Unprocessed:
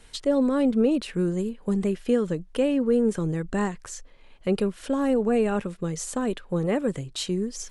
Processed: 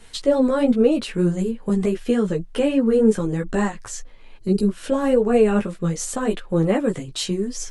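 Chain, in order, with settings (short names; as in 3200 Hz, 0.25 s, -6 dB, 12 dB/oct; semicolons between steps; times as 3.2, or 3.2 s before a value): chorus voices 4, 0.83 Hz, delay 14 ms, depth 4.9 ms; spectral gain 4.38–4.68, 450–3800 Hz -16 dB; gain +8 dB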